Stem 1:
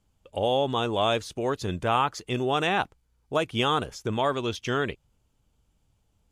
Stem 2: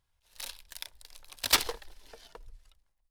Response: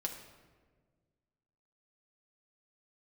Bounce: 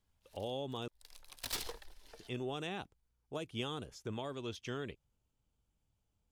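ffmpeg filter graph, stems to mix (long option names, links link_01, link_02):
-filter_complex "[0:a]volume=-12dB,asplit=3[link_01][link_02][link_03];[link_01]atrim=end=0.88,asetpts=PTS-STARTPTS,afade=type=out:start_time=0.876:duration=0.004:curve=hsin[link_04];[link_02]atrim=start=0.88:end=2.19,asetpts=PTS-STARTPTS,volume=0[link_05];[link_03]atrim=start=2.19,asetpts=PTS-STARTPTS,afade=type=in:duration=0.004:curve=hsin[link_06];[link_04][link_05][link_06]concat=n=3:v=0:a=1,asplit=2[link_07][link_08];[1:a]aeval=exprs='(tanh(28.2*val(0)+0.3)-tanh(0.3))/28.2':channel_layout=same,volume=-4dB[link_09];[link_08]apad=whole_len=137108[link_10];[link_09][link_10]sidechaincompress=threshold=-55dB:ratio=8:attack=20:release=162[link_11];[link_07][link_11]amix=inputs=2:normalize=0,acrossover=split=480|3000[link_12][link_13][link_14];[link_13]acompressor=threshold=-45dB:ratio=6[link_15];[link_12][link_15][link_14]amix=inputs=3:normalize=0"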